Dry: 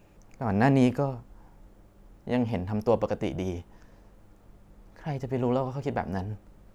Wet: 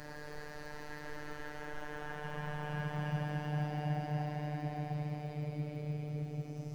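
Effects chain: companding laws mixed up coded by mu; on a send: band-passed feedback delay 356 ms, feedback 74%, band-pass 610 Hz, level -13.5 dB; on the sum: compression, threshold -36 dBFS, peak gain reduction 18.5 dB; Paulstretch 30×, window 0.10 s, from 4.96 s; robot voice 149 Hz; trim +1.5 dB

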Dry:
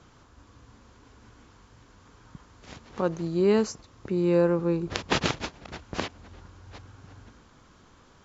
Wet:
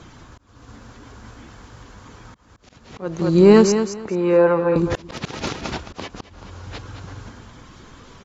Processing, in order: coarse spectral quantiser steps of 15 dB; 3.72–4.76 s: three-band isolator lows -13 dB, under 430 Hz, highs -17 dB, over 2.7 kHz; in parallel at -6 dB: sine folder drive 6 dB, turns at -6.5 dBFS; on the sum: feedback delay 216 ms, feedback 21%, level -9 dB; slow attack 379 ms; trim +4 dB

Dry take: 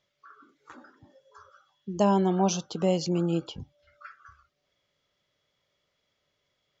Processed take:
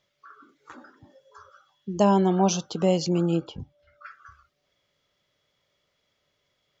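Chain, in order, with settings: 3.36–4.06 s: treble shelf 2.5 kHz -9 dB; trim +3 dB

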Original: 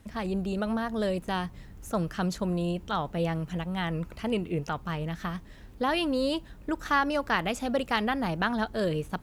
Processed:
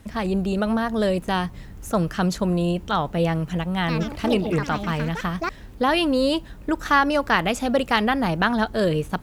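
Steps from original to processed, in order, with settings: 3.76–5.91 s: ever faster or slower copies 121 ms, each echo +5 st, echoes 2, each echo -6 dB; trim +7 dB

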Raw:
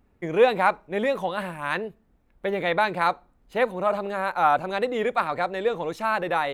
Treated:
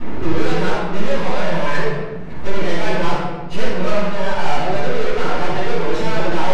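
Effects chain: tracing distortion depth 0.11 ms; high-pass 87 Hz 12 dB/octave; upward compressor, threshold -22 dBFS; phaser 0.31 Hz, delay 1.8 ms, feedback 24%; valve stage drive 37 dB, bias 0.6; half-wave rectifier; distance through air 82 m; simulated room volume 730 m³, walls mixed, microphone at 9.8 m; trim +8 dB

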